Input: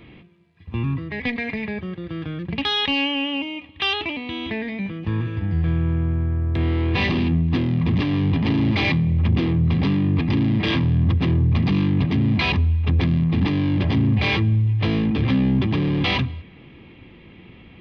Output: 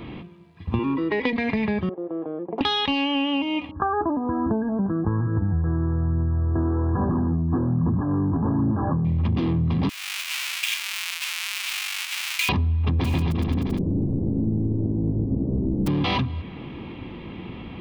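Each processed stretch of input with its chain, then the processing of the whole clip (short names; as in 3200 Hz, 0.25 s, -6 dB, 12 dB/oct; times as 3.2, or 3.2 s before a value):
0.79–1.33 resonant low shelf 170 Hz -14 dB, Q 3 + comb 2.1 ms, depth 66%
1.89–2.61 wrapped overs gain 16.5 dB + Butterworth band-pass 550 Hz, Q 1.3
3.71–9.05 phaser 1.2 Hz, delay 3.4 ms, feedback 32% + brick-wall FIR low-pass 1700 Hz
9.89–12.49 half-waves squared off + ladder high-pass 2100 Hz, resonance 55%
13.04–15.86 spectral contrast lowered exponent 0.15 + inverse Chebyshev low-pass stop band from 1900 Hz, stop band 80 dB + bouncing-ball echo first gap 0.14 s, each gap 0.9×, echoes 7, each echo -2 dB
whole clip: graphic EQ 250/1000/2000 Hz +3/+6/-5 dB; compressor, threshold -28 dBFS; gain +7.5 dB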